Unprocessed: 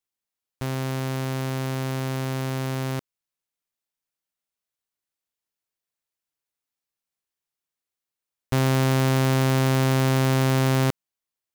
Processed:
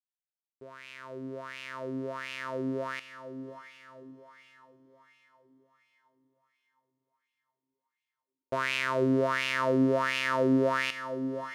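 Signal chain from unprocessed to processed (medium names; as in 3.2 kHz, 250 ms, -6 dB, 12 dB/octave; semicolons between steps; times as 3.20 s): fade-in on the opening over 2.82 s; peaking EQ 8.8 kHz +7.5 dB 2.4 oct; band-stop 790 Hz, Q 12; echo that smears into a reverb 595 ms, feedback 51%, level -10.5 dB; wah-wah 1.4 Hz 300–2600 Hz, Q 5.1; trim +7 dB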